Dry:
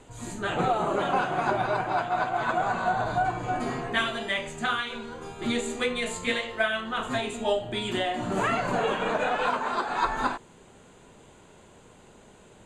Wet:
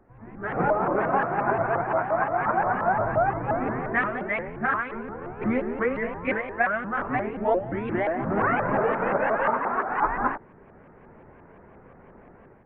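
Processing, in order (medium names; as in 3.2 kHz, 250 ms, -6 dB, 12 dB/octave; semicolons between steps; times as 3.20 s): steep low-pass 2.1 kHz 48 dB/octave; level rider gain up to 10.5 dB; vibrato with a chosen wave saw up 5.7 Hz, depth 250 cents; trim -7 dB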